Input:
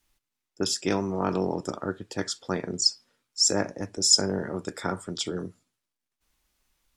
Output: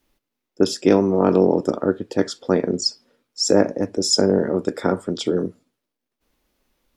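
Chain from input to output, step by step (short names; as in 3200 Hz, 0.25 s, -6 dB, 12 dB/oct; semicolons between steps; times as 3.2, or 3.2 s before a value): graphic EQ 250/500/8000 Hz +8/+9/-6 dB; gain +3 dB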